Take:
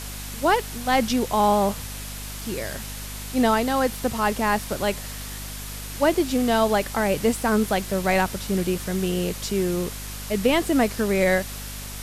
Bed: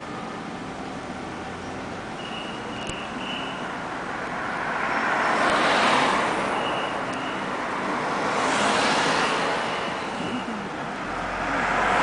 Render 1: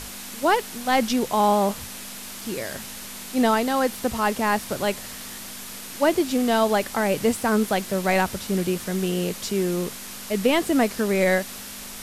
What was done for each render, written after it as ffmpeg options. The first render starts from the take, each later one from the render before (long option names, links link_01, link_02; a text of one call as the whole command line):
ffmpeg -i in.wav -af "bandreject=frequency=50:width_type=h:width=6,bandreject=frequency=100:width_type=h:width=6,bandreject=frequency=150:width_type=h:width=6" out.wav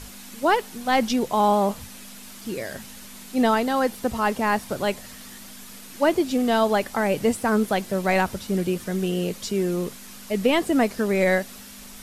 ffmpeg -i in.wav -af "afftdn=noise_reduction=7:noise_floor=-37" out.wav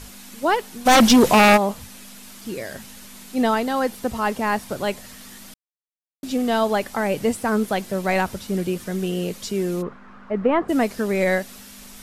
ffmpeg -i in.wav -filter_complex "[0:a]asplit=3[link_01][link_02][link_03];[link_01]afade=type=out:start_time=0.85:duration=0.02[link_04];[link_02]aeval=exprs='0.376*sin(PI/2*3.16*val(0)/0.376)':channel_layout=same,afade=type=in:start_time=0.85:duration=0.02,afade=type=out:start_time=1.56:duration=0.02[link_05];[link_03]afade=type=in:start_time=1.56:duration=0.02[link_06];[link_04][link_05][link_06]amix=inputs=3:normalize=0,asplit=3[link_07][link_08][link_09];[link_07]afade=type=out:start_time=9.81:duration=0.02[link_10];[link_08]lowpass=frequency=1300:width_type=q:width=2.3,afade=type=in:start_time=9.81:duration=0.02,afade=type=out:start_time=10.68:duration=0.02[link_11];[link_09]afade=type=in:start_time=10.68:duration=0.02[link_12];[link_10][link_11][link_12]amix=inputs=3:normalize=0,asplit=3[link_13][link_14][link_15];[link_13]atrim=end=5.54,asetpts=PTS-STARTPTS,afade=type=out:start_time=5.536:duration=0.004:curve=hsin[link_16];[link_14]atrim=start=5.54:end=6.23,asetpts=PTS-STARTPTS,volume=0[link_17];[link_15]atrim=start=6.23,asetpts=PTS-STARTPTS,afade=type=in:duration=0.004:curve=hsin[link_18];[link_16][link_17][link_18]concat=n=3:v=0:a=1" out.wav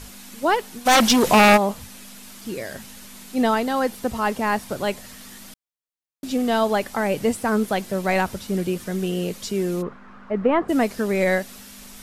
ffmpeg -i in.wav -filter_complex "[0:a]asettb=1/sr,asplit=3[link_01][link_02][link_03];[link_01]atrim=end=0.794[link_04];[link_02]atrim=start=0.79:end=1.27,asetpts=PTS-STARTPTS,afade=type=in:duration=0.004:curve=qsin,afade=type=out:start_time=0.476:duration=0.004:curve=qsin,lowshelf=frequency=480:gain=-6.5[link_05];[link_03]atrim=start=1.266[link_06];[link_04][link_05]acrossfade=duration=0.004:curve1=hsin:curve2=qsin[link_07];[link_07][link_06]acrossfade=duration=0.004:curve1=qsin:curve2=hsin" out.wav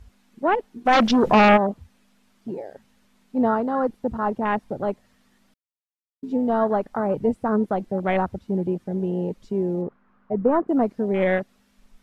ffmpeg -i in.wav -af "afwtdn=0.0631,lowpass=frequency=2000:poles=1" out.wav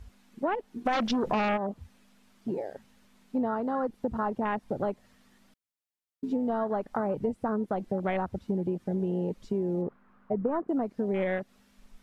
ffmpeg -i in.wav -af "acompressor=threshold=-26dB:ratio=6" out.wav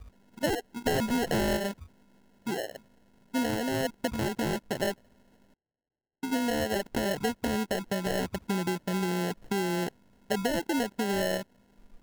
ffmpeg -i in.wav -af "acrusher=samples=37:mix=1:aa=0.000001" out.wav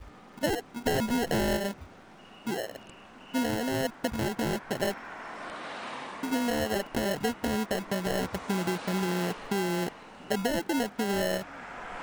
ffmpeg -i in.wav -i bed.wav -filter_complex "[1:a]volume=-19dB[link_01];[0:a][link_01]amix=inputs=2:normalize=0" out.wav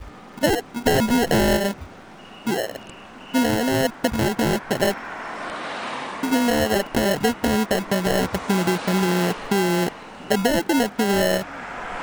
ffmpeg -i in.wav -af "volume=9dB" out.wav